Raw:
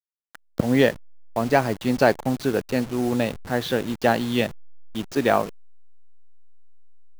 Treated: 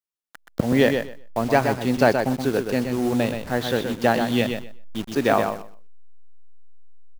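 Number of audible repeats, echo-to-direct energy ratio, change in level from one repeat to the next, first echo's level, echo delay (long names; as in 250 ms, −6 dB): 2, −6.5 dB, −15.5 dB, −6.5 dB, 125 ms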